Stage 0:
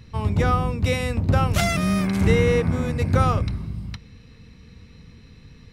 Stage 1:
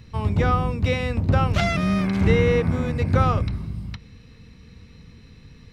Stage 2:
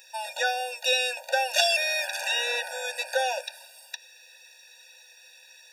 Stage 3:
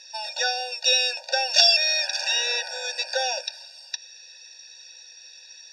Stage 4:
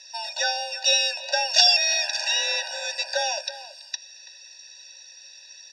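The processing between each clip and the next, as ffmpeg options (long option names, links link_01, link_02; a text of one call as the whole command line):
ffmpeg -i in.wav -filter_complex "[0:a]acrossover=split=5300[link_01][link_02];[link_02]acompressor=threshold=-56dB:ratio=4:attack=1:release=60[link_03];[link_01][link_03]amix=inputs=2:normalize=0" out.wav
ffmpeg -i in.wav -af "crystalizer=i=9.5:c=0,afftfilt=real='re*eq(mod(floor(b*sr/1024/480),2),1)':imag='im*eq(mod(floor(b*sr/1024/480),2),1)':win_size=1024:overlap=0.75,volume=-2.5dB" out.wav
ffmpeg -i in.wav -af "lowpass=frequency=5200:width_type=q:width=6.3,volume=-1.5dB" out.wav
ffmpeg -i in.wav -filter_complex "[0:a]asplit=2[link_01][link_02];[link_02]adelay=330,highpass=300,lowpass=3400,asoftclip=type=hard:threshold=-10.5dB,volume=-14dB[link_03];[link_01][link_03]amix=inputs=2:normalize=0,afreqshift=31" out.wav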